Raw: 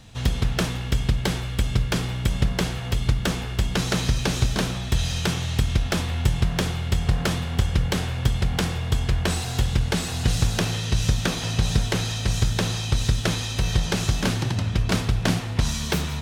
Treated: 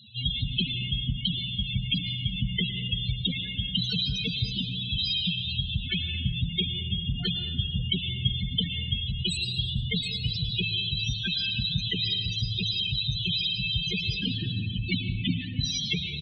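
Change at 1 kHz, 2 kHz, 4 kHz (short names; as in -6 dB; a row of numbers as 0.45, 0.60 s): under -30 dB, -4.5 dB, +4.5 dB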